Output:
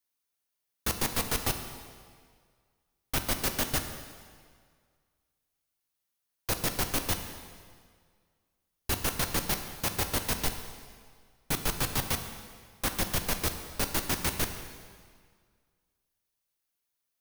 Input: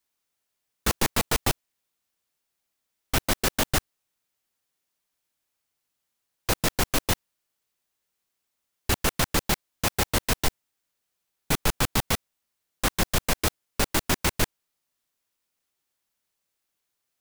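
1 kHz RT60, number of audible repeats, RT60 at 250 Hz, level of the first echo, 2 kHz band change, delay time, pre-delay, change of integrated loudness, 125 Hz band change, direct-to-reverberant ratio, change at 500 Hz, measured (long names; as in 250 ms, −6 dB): 1.9 s, no echo audible, 1.8 s, no echo audible, −5.5 dB, no echo audible, 4 ms, −4.5 dB, −5.5 dB, 6.0 dB, −6.0 dB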